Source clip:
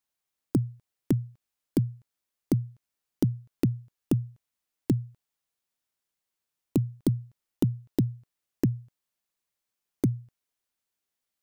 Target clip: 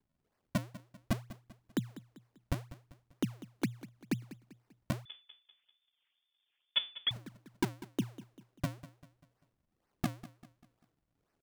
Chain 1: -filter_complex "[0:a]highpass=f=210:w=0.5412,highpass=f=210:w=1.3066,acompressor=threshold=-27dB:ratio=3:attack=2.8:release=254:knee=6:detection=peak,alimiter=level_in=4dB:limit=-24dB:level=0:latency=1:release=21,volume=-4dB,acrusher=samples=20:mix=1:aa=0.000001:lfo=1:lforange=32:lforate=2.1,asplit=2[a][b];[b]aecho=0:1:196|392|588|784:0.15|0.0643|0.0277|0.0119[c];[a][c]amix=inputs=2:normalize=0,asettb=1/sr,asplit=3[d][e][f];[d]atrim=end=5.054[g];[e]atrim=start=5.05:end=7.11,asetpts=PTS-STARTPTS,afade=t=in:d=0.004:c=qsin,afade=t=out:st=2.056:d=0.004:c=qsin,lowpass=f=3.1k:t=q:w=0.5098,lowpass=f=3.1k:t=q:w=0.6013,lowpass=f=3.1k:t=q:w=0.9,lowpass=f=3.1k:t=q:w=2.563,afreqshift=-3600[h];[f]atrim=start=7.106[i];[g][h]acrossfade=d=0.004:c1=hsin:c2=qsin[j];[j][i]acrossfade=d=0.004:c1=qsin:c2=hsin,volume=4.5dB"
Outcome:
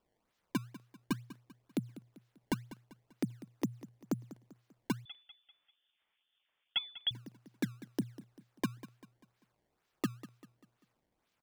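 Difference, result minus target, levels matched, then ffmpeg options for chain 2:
decimation with a swept rate: distortion -12 dB; compressor: peak gain reduction +7.5 dB
-filter_complex "[0:a]highpass=f=210:w=0.5412,highpass=f=210:w=1.3066,alimiter=level_in=4dB:limit=-24dB:level=0:latency=1:release=21,volume=-4dB,acrusher=samples=61:mix=1:aa=0.000001:lfo=1:lforange=97.6:lforate=2.1,asplit=2[a][b];[b]aecho=0:1:196|392|588|784:0.15|0.0643|0.0277|0.0119[c];[a][c]amix=inputs=2:normalize=0,asettb=1/sr,asplit=3[d][e][f];[d]atrim=end=5.054[g];[e]atrim=start=5.05:end=7.11,asetpts=PTS-STARTPTS,afade=t=in:d=0.004:c=qsin,afade=t=out:st=2.056:d=0.004:c=qsin,lowpass=f=3.1k:t=q:w=0.5098,lowpass=f=3.1k:t=q:w=0.6013,lowpass=f=3.1k:t=q:w=0.9,lowpass=f=3.1k:t=q:w=2.563,afreqshift=-3600[h];[f]atrim=start=7.106[i];[g][h]acrossfade=d=0.004:c1=hsin:c2=qsin[j];[j][i]acrossfade=d=0.004:c1=qsin:c2=hsin,volume=4.5dB"

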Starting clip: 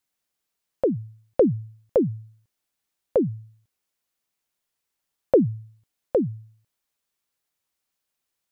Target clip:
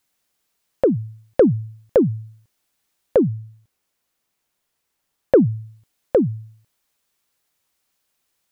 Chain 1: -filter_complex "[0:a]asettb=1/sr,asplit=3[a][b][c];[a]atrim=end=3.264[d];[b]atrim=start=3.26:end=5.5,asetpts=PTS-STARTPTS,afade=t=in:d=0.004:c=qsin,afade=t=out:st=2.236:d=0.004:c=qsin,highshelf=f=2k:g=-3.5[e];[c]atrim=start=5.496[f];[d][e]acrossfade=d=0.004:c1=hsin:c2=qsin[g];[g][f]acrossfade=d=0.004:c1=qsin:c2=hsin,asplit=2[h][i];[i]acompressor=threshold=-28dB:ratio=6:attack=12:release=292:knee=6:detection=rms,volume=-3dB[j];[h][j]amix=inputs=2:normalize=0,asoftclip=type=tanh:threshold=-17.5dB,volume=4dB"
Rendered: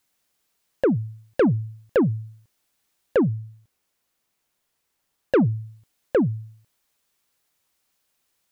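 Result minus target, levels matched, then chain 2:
soft clip: distortion +15 dB
-filter_complex "[0:a]asettb=1/sr,asplit=3[a][b][c];[a]atrim=end=3.264[d];[b]atrim=start=3.26:end=5.5,asetpts=PTS-STARTPTS,afade=t=in:d=0.004:c=qsin,afade=t=out:st=2.236:d=0.004:c=qsin,highshelf=f=2k:g=-3.5[e];[c]atrim=start=5.496[f];[d][e]acrossfade=d=0.004:c1=hsin:c2=qsin[g];[g][f]acrossfade=d=0.004:c1=qsin:c2=hsin,asplit=2[h][i];[i]acompressor=threshold=-28dB:ratio=6:attack=12:release=292:knee=6:detection=rms,volume=-3dB[j];[h][j]amix=inputs=2:normalize=0,asoftclip=type=tanh:threshold=-6dB,volume=4dB"

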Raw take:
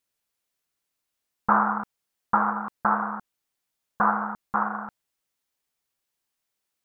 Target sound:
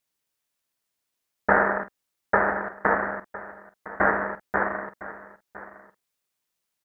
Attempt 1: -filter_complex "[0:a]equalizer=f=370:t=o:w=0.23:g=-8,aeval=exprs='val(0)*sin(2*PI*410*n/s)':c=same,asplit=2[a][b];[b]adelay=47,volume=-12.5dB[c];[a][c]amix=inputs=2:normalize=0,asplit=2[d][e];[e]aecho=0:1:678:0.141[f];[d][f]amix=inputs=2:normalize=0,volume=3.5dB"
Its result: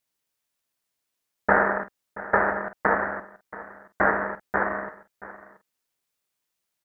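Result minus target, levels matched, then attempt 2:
echo 0.331 s early
-filter_complex "[0:a]equalizer=f=370:t=o:w=0.23:g=-8,aeval=exprs='val(0)*sin(2*PI*410*n/s)':c=same,asplit=2[a][b];[b]adelay=47,volume=-12.5dB[c];[a][c]amix=inputs=2:normalize=0,asplit=2[d][e];[e]aecho=0:1:1009:0.141[f];[d][f]amix=inputs=2:normalize=0,volume=3.5dB"

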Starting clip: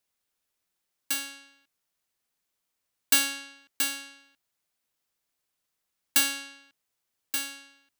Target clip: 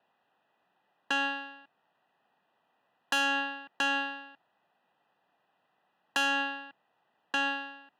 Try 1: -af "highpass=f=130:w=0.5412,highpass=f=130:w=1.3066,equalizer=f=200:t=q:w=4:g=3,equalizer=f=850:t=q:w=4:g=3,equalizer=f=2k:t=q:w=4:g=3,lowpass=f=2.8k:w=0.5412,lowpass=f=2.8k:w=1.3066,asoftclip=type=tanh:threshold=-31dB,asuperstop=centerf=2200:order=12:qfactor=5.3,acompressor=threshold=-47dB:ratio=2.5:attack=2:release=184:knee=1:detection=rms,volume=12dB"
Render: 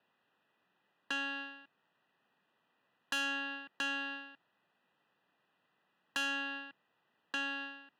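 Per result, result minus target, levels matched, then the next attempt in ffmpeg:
compressor: peak gain reduction +6 dB; 1000 Hz band -3.5 dB
-af "highpass=f=130:w=0.5412,highpass=f=130:w=1.3066,equalizer=f=200:t=q:w=4:g=3,equalizer=f=850:t=q:w=4:g=3,equalizer=f=2k:t=q:w=4:g=3,lowpass=f=2.8k:w=0.5412,lowpass=f=2.8k:w=1.3066,asoftclip=type=tanh:threshold=-31dB,asuperstop=centerf=2200:order=12:qfactor=5.3,acompressor=threshold=-36.5dB:ratio=2.5:attack=2:release=184:knee=1:detection=rms,volume=12dB"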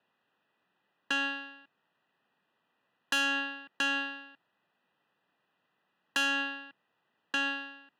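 1000 Hz band -4.0 dB
-af "highpass=f=130:w=0.5412,highpass=f=130:w=1.3066,equalizer=f=200:t=q:w=4:g=3,equalizer=f=850:t=q:w=4:g=3,equalizer=f=2k:t=q:w=4:g=3,lowpass=f=2.8k:w=0.5412,lowpass=f=2.8k:w=1.3066,asoftclip=type=tanh:threshold=-31dB,asuperstop=centerf=2200:order=12:qfactor=5.3,equalizer=f=750:t=o:w=0.74:g=9.5,acompressor=threshold=-36.5dB:ratio=2.5:attack=2:release=184:knee=1:detection=rms,volume=12dB"

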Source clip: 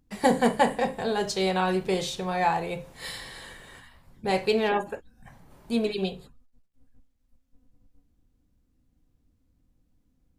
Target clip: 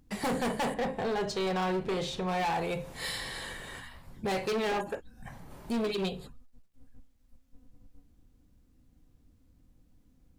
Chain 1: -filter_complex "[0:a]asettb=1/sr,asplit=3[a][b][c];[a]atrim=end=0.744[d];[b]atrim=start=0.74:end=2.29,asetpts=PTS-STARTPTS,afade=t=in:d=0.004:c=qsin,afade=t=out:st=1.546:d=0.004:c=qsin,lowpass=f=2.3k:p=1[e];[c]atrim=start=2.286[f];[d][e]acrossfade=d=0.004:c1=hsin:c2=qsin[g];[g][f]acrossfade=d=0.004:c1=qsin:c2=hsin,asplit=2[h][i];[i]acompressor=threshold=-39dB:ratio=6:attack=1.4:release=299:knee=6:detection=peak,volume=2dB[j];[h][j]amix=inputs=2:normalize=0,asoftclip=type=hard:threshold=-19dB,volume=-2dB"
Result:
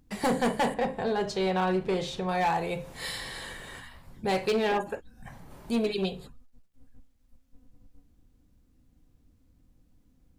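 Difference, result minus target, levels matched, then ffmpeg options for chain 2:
hard clip: distortion -6 dB
-filter_complex "[0:a]asettb=1/sr,asplit=3[a][b][c];[a]atrim=end=0.744[d];[b]atrim=start=0.74:end=2.29,asetpts=PTS-STARTPTS,afade=t=in:d=0.004:c=qsin,afade=t=out:st=1.546:d=0.004:c=qsin,lowpass=f=2.3k:p=1[e];[c]atrim=start=2.286[f];[d][e]acrossfade=d=0.004:c1=hsin:c2=qsin[g];[g][f]acrossfade=d=0.004:c1=qsin:c2=hsin,asplit=2[h][i];[i]acompressor=threshold=-39dB:ratio=6:attack=1.4:release=299:knee=6:detection=peak,volume=2dB[j];[h][j]amix=inputs=2:normalize=0,asoftclip=type=hard:threshold=-25.5dB,volume=-2dB"

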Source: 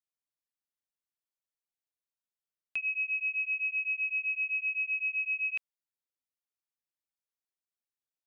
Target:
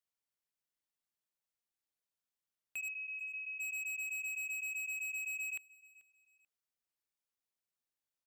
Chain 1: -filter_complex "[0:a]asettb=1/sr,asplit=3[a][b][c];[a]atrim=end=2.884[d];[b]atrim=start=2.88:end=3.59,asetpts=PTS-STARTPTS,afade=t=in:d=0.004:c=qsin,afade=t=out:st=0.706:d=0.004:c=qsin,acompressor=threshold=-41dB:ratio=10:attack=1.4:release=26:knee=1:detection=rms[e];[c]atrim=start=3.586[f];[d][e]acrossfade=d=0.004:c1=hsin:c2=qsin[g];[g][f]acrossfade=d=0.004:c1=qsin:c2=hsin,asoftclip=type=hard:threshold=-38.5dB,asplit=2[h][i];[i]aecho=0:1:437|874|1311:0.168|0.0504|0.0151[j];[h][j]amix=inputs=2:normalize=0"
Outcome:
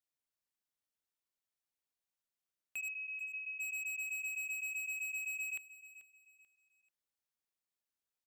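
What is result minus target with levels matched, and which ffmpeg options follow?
echo-to-direct +6.5 dB
-filter_complex "[0:a]asettb=1/sr,asplit=3[a][b][c];[a]atrim=end=2.884[d];[b]atrim=start=2.88:end=3.59,asetpts=PTS-STARTPTS,afade=t=in:d=0.004:c=qsin,afade=t=out:st=0.706:d=0.004:c=qsin,acompressor=threshold=-41dB:ratio=10:attack=1.4:release=26:knee=1:detection=rms[e];[c]atrim=start=3.586[f];[d][e]acrossfade=d=0.004:c1=hsin:c2=qsin[g];[g][f]acrossfade=d=0.004:c1=qsin:c2=hsin,asoftclip=type=hard:threshold=-38.5dB,asplit=2[h][i];[i]aecho=0:1:437|874:0.0794|0.0238[j];[h][j]amix=inputs=2:normalize=0"

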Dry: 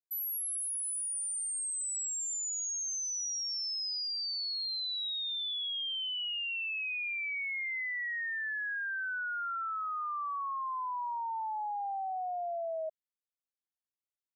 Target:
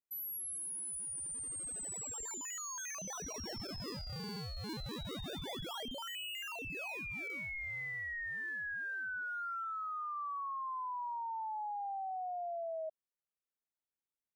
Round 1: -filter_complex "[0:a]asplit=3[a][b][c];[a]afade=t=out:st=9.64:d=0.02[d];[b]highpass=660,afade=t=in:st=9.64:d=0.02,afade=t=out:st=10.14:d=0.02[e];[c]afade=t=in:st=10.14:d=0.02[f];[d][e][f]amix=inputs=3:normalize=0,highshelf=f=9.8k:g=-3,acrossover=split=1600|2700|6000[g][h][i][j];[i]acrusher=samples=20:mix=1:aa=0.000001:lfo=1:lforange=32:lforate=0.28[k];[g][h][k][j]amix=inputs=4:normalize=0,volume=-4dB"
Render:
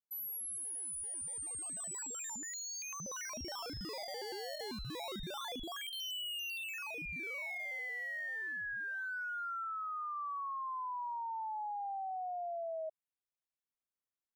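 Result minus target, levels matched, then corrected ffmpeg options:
decimation with a swept rate: distortion -15 dB
-filter_complex "[0:a]asplit=3[a][b][c];[a]afade=t=out:st=9.64:d=0.02[d];[b]highpass=660,afade=t=in:st=9.64:d=0.02,afade=t=out:st=10.14:d=0.02[e];[c]afade=t=in:st=10.14:d=0.02[f];[d][e][f]amix=inputs=3:normalize=0,highshelf=f=9.8k:g=-3,acrossover=split=1600|2700|6000[g][h][i][j];[i]acrusher=samples=40:mix=1:aa=0.000001:lfo=1:lforange=64:lforate=0.28[k];[g][h][k][j]amix=inputs=4:normalize=0,volume=-4dB"

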